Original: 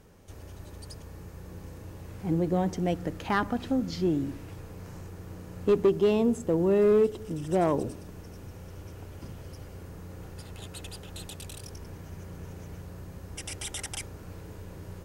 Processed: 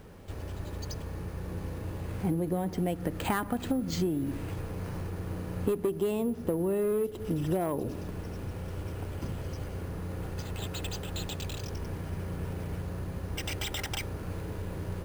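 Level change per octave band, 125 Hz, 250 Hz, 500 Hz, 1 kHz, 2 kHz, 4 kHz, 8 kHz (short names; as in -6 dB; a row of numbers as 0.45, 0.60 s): +2.0, -2.5, -5.5, -3.0, -1.0, +2.5, -1.5 dB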